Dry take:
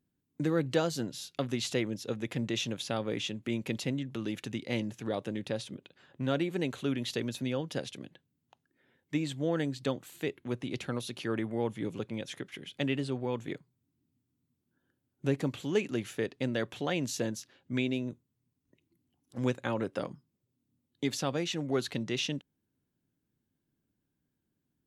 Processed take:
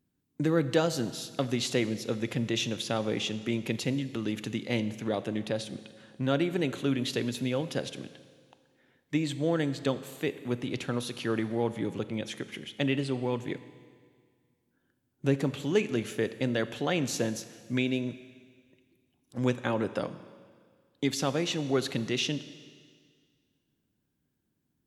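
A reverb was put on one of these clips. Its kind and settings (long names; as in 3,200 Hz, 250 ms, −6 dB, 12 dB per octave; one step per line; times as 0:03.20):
four-comb reverb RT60 1.9 s, combs from 29 ms, DRR 13 dB
level +3 dB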